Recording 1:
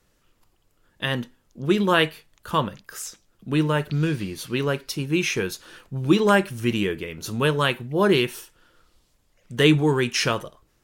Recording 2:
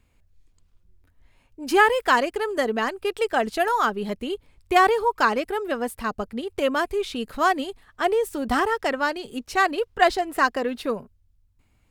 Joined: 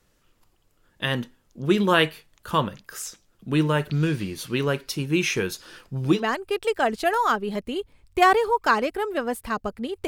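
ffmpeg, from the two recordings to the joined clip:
ffmpeg -i cue0.wav -i cue1.wav -filter_complex "[0:a]asettb=1/sr,asplit=3[link_01][link_02][link_03];[link_01]atrim=end=5.584[link_04];[link_02]atrim=start=5.58:end=6.24,asetpts=PTS-STARTPTS,afade=type=in:duration=0.004:curve=qsin,afade=type=out:start_time=0.656:duration=0.004:curve=qsin,equalizer=frequency=5000:width=7.7:gain=9[link_05];[link_03]atrim=start=6.236[link_06];[link_04][link_05]acrossfade=duration=0.004:curve1=hsin:curve2=qsin[link_07];[link_07][link_06]acrossfade=duration=0.004:curve1=qsin:curve2=hsin,apad=whole_dur=10.07,atrim=end=10.07,atrim=end=6.24,asetpts=PTS-STARTPTS[link_08];[1:a]atrim=start=2.62:end=6.61,asetpts=PTS-STARTPTS[link_09];[link_08][link_09]acrossfade=duration=0.16:curve1=tri:curve2=tri" out.wav

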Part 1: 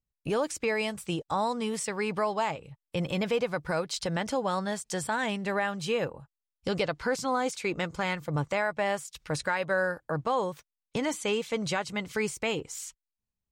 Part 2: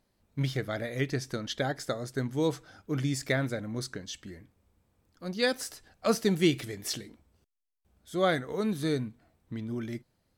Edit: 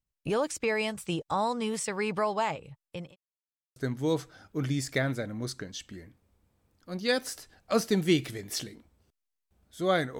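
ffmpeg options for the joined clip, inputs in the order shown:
ffmpeg -i cue0.wav -i cue1.wav -filter_complex "[0:a]apad=whole_dur=10.19,atrim=end=10.19,asplit=2[link_01][link_02];[link_01]atrim=end=3.16,asetpts=PTS-STARTPTS,afade=type=out:start_time=2.68:duration=0.48[link_03];[link_02]atrim=start=3.16:end=3.76,asetpts=PTS-STARTPTS,volume=0[link_04];[1:a]atrim=start=2.1:end=8.53,asetpts=PTS-STARTPTS,afade=type=in:duration=0.004:curve=hsin[link_05];[link_03][link_04][link_05]concat=n=3:v=0:a=1" out.wav

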